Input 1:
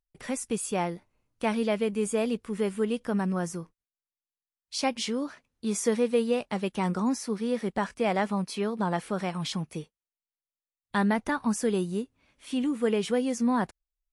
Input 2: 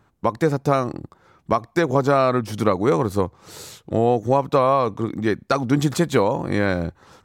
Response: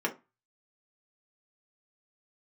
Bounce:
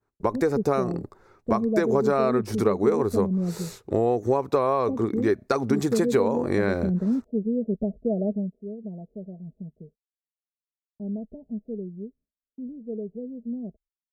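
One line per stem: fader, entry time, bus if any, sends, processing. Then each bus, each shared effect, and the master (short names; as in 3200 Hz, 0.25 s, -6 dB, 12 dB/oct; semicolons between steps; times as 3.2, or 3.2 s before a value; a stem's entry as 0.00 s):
8.3 s 0 dB -> 8.58 s -11.5 dB, 0.05 s, no send, steep low-pass 650 Hz 72 dB/oct; low shelf 130 Hz +8 dB; comb 4.7 ms, depth 59%
-1.5 dB, 0.00 s, no send, thirty-one-band EQ 160 Hz -9 dB, 400 Hz +9 dB, 3150 Hz -10 dB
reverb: off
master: expander -50 dBFS; compressor 2.5:1, threshold -20 dBFS, peak gain reduction 8.5 dB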